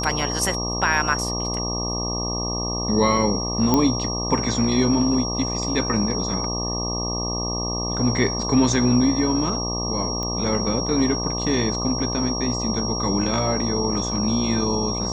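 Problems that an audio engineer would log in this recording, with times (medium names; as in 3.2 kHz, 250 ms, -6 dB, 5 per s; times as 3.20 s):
buzz 60 Hz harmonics 20 -28 dBFS
whine 5.6 kHz -27 dBFS
3.74 s: pop -5 dBFS
10.23 s: pop -16 dBFS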